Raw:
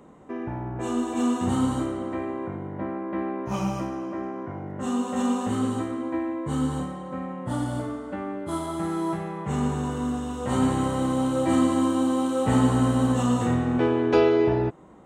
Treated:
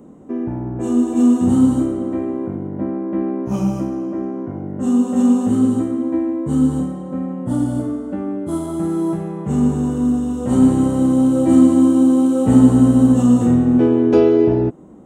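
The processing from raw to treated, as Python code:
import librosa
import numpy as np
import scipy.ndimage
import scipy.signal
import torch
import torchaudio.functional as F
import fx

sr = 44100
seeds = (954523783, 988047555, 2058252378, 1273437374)

y = fx.graphic_eq(x, sr, hz=(250, 1000, 2000, 4000), db=(7, -6, -8, -7))
y = y * 10.0 ** (5.0 / 20.0)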